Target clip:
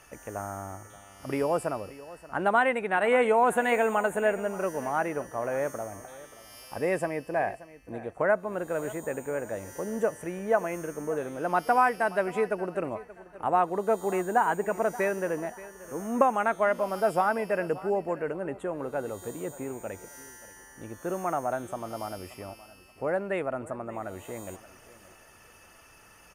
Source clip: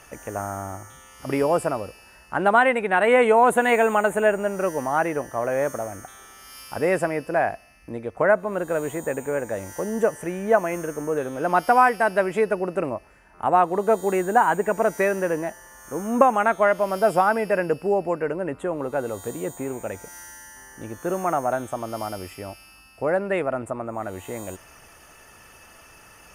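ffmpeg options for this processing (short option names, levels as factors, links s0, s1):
-filter_complex "[0:a]asettb=1/sr,asplit=3[s0][s1][s2];[s0]atrim=end=5.904[s3];[s1]atrim=start=5.9:end=7.94,asetpts=PTS-STARTPTS,afade=t=in:d=0.004:c=qsin,afade=t=out:st=2.036:d=0.004:c=qsin,asuperstop=centerf=1400:order=4:qfactor=6.5[s4];[s2]atrim=start=7.936[s5];[s3][s4]acrossfade=d=0.004:c1=hsin:c2=qsin[s6];[s6][s5]acrossfade=d=0.004:c1=qsin:c2=hsin,aecho=1:1:579|1158|1737:0.126|0.0441|0.0154,volume=0.501"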